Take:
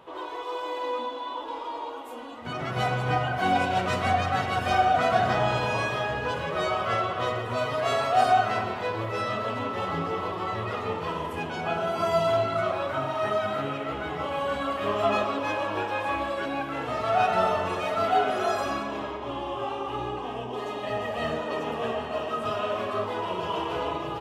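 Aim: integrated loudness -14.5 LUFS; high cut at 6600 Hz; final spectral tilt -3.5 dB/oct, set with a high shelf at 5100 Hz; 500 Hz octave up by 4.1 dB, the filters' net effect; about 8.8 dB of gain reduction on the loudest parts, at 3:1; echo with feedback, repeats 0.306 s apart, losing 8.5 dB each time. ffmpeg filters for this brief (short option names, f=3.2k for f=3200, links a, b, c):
-af "lowpass=6.6k,equalizer=f=500:t=o:g=5.5,highshelf=f=5.1k:g=4.5,acompressor=threshold=-26dB:ratio=3,aecho=1:1:306|612|918|1224:0.376|0.143|0.0543|0.0206,volume=14dB"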